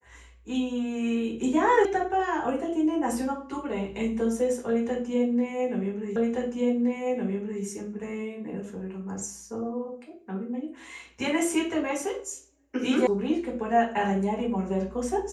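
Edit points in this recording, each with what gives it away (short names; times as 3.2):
1.85 sound cut off
6.16 repeat of the last 1.47 s
13.07 sound cut off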